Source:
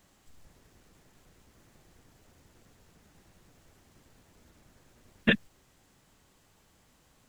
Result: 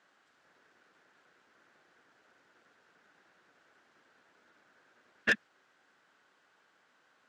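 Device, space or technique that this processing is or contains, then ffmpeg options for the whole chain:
intercom: -af "highpass=370,lowpass=4300,equalizer=f=1500:t=o:w=0.56:g=11,asoftclip=type=tanh:threshold=0.188,volume=0.668"

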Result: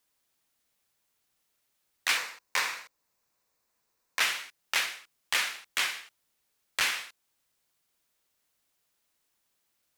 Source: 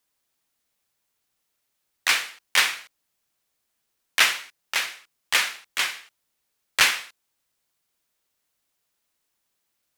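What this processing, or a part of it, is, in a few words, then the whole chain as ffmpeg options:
stacked limiters: -filter_complex "[0:a]asettb=1/sr,asplit=3[s0][s1][s2];[s0]atrim=end=2.174[s3];[s1]atrim=start=2.17:end=4.21,asetpts=PTS-STARTPTS,afade=t=in:d=0.004:c=qsin,afade=t=out:st=2.036:d=0.004:c=qsin,equalizer=f=500:t=o:w=0.33:g=6,equalizer=f=1000:t=o:w=0.33:g=7,equalizer=f=3150:t=o:w=0.33:g=-8,equalizer=f=10000:t=o:w=0.33:g=-5,equalizer=f=16000:t=o:w=0.33:g=-3[s4];[s2]atrim=start=4.206[s5];[s3][s4]acrossfade=d=0.004:c1=hsin:c2=qsin[s6];[s6][s5]acrossfade=d=0.004:c1=qsin:c2=hsin,alimiter=limit=0.398:level=0:latency=1:release=485,alimiter=limit=0.188:level=0:latency=1:release=193"

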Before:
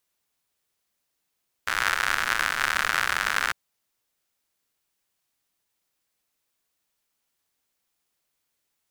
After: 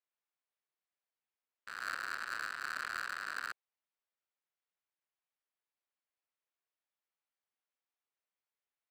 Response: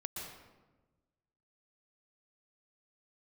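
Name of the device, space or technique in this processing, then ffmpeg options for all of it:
walkie-talkie: -af "highpass=440,lowpass=2700,asoftclip=type=hard:threshold=0.0562,agate=range=0.2:threshold=0.0316:ratio=16:detection=peak,volume=1.19"

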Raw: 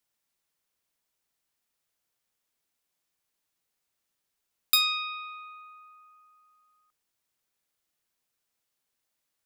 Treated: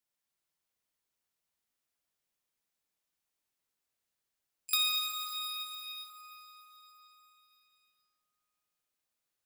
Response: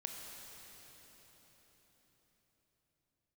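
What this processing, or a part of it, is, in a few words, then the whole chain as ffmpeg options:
shimmer-style reverb: -filter_complex "[0:a]asplit=2[s0][s1];[s1]asetrate=88200,aresample=44100,atempo=0.5,volume=0.251[s2];[s0][s2]amix=inputs=2:normalize=0[s3];[1:a]atrim=start_sample=2205[s4];[s3][s4]afir=irnorm=-1:irlink=0,asettb=1/sr,asplit=3[s5][s6][s7];[s5]atrim=end=4.774[s8];[s6]atrim=start=4.77:end=6.1,asetpts=PTS-STARTPTS,afade=t=in:d=0.004:c=qsin,afade=t=out:st=1.326:d=0.004:c=qsin,asplit=2[s9][s10];[s10]adelay=22,volume=0.75[s11];[s9][s11]amix=inputs=2:normalize=0,atrim=end_sample=58653[s12];[s7]atrim=start=6.096[s13];[s8][s12]acrossfade=d=0.004:c1=hsin:c2=qsin[s14];[s14][s13]acrossfade=d=0.004:c1=qsin:c2=hsin,volume=0.668"

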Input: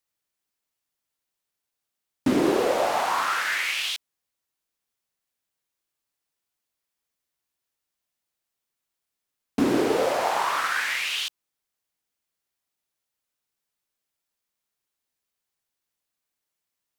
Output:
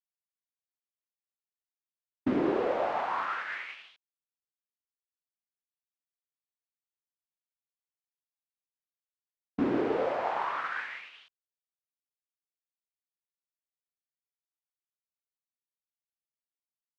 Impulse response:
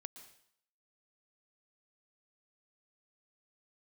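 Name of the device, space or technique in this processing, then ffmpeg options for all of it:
hearing-loss simulation: -af "lowpass=2200,agate=range=0.0224:threshold=0.0631:ratio=3:detection=peak,volume=0.501"

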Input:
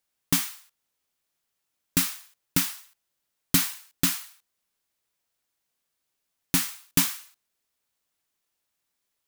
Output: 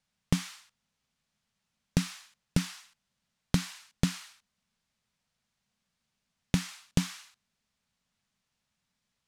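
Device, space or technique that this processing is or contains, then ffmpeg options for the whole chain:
jukebox: -af "lowpass=6400,lowshelf=f=260:t=q:w=3:g=7,acompressor=threshold=0.0562:ratio=6,volume=1.26"

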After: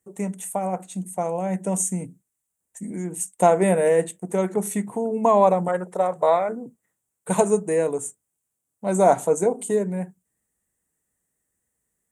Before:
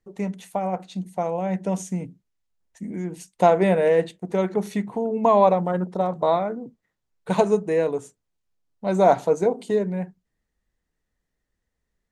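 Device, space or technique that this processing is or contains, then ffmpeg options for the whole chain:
budget condenser microphone: -filter_complex "[0:a]highpass=89,highshelf=f=6300:t=q:w=3:g=11.5,asettb=1/sr,asplit=3[s0][s1][s2];[s0]atrim=end=5.684[s3];[s1]atrim=start=5.68:end=6.49,asetpts=PTS-STARTPTS,afade=t=in:d=0.004:c=qsin,afade=t=out:st=0.806:d=0.004:c=qsin,equalizer=f=125:t=o:w=1:g=-4,equalizer=f=250:t=o:w=1:g=-12,equalizer=f=500:t=o:w=1:g=5,equalizer=f=2000:t=o:w=1:g=7[s4];[s2]atrim=start=6.486[s5];[s3][s4]acrossfade=d=0.004:c1=hsin:c2=qsin[s6];[s6][s5]acrossfade=d=0.004:c1=qsin:c2=hsin"

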